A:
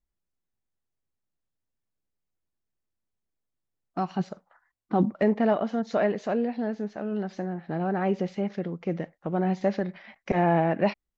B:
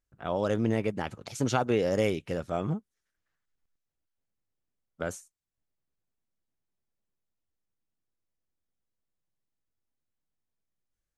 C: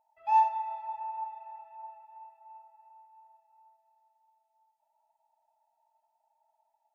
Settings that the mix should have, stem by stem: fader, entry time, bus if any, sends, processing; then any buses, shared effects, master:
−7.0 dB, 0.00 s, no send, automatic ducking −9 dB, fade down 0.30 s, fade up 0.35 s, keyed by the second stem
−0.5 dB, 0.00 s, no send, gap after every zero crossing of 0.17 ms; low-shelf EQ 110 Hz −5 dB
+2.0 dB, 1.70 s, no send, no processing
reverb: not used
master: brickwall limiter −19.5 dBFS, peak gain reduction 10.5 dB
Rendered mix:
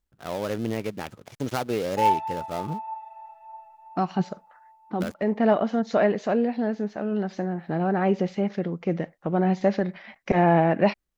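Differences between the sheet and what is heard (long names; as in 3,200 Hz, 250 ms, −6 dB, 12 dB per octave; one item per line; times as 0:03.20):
stem A −7.0 dB → +3.5 dB
master: missing brickwall limiter −19.5 dBFS, peak gain reduction 10.5 dB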